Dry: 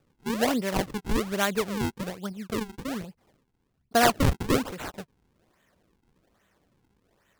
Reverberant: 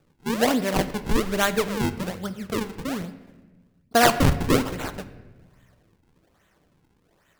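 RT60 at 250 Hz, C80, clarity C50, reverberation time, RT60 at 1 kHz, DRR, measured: 1.7 s, 14.5 dB, 13.5 dB, 1.2 s, 1.1 s, 10.5 dB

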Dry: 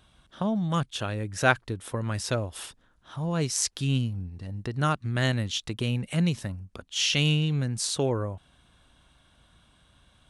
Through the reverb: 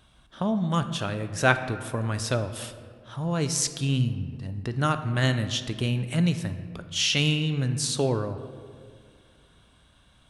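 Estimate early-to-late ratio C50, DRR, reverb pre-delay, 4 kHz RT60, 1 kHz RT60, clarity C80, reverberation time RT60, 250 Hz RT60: 10.5 dB, 9.0 dB, 3 ms, 1.1 s, 1.8 s, 12.0 dB, 2.1 s, 2.4 s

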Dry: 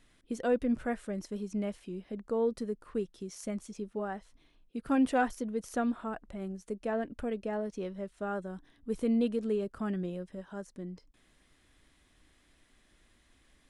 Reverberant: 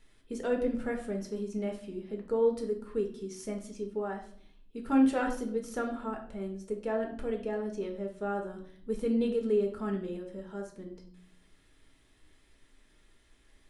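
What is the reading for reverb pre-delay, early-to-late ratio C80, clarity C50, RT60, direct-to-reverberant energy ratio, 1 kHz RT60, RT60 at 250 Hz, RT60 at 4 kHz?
4 ms, 13.0 dB, 8.5 dB, 0.55 s, 2.0 dB, 0.45 s, 0.80 s, 0.45 s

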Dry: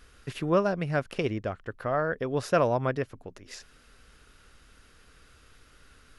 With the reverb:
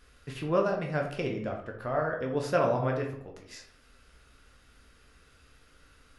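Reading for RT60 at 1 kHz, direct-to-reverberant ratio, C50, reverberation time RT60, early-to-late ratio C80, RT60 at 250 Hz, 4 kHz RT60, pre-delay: 0.65 s, 0.5 dB, 6.5 dB, 0.65 s, 10.0 dB, 0.70 s, 0.40 s, 10 ms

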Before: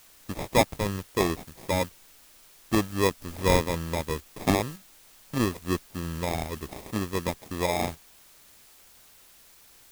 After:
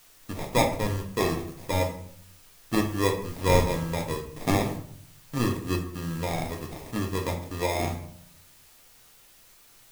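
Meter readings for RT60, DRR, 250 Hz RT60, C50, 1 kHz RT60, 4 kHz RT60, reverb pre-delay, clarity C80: 0.65 s, 1.5 dB, 0.85 s, 8.0 dB, 0.60 s, 0.40 s, 4 ms, 12.5 dB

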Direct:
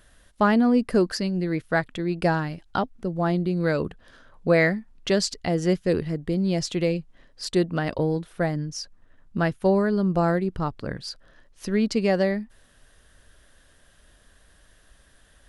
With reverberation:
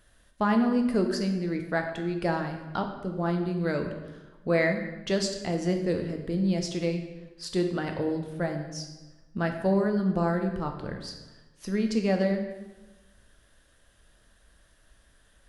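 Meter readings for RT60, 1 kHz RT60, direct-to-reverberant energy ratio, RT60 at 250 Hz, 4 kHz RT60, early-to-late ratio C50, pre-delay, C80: 1.1 s, 1.1 s, 3.5 dB, 1.2 s, 0.90 s, 6.5 dB, 6 ms, 8.5 dB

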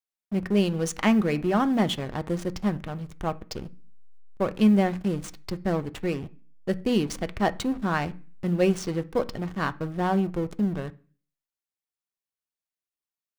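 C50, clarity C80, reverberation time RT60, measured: 21.0 dB, 27.0 dB, 0.40 s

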